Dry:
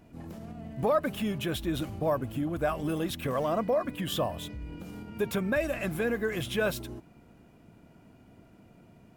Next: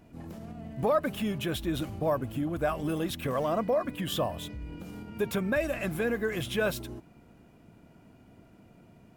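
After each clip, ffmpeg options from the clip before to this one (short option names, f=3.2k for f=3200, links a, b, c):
-af anull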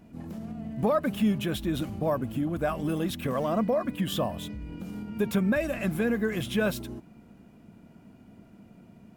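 -af "equalizer=f=210:t=o:w=0.58:g=8"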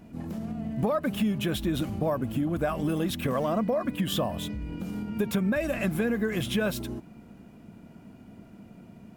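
-af "acompressor=threshold=-27dB:ratio=4,volume=3.5dB"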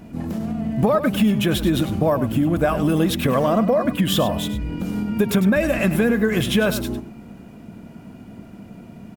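-af "aecho=1:1:101:0.251,volume=8.5dB"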